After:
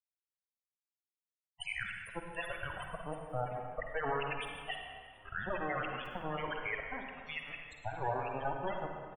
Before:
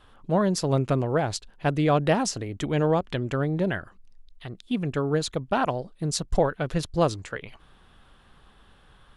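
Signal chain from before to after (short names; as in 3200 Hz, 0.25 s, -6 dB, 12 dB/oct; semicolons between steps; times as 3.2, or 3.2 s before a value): whole clip reversed; de-esser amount 45%; Chebyshev high-pass 670 Hz, order 3; tilt +3.5 dB/oct; negative-ratio compressor -39 dBFS, ratio -1; tube stage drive 37 dB, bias 0.4; band shelf 5300 Hz -14.5 dB 1.1 oct; companded quantiser 2-bit; loudest bins only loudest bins 16; frequency-shifting echo 0.365 s, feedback 64%, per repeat +35 Hz, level -23.5 dB; reverb RT60 1.7 s, pre-delay 41 ms, DRR 2 dB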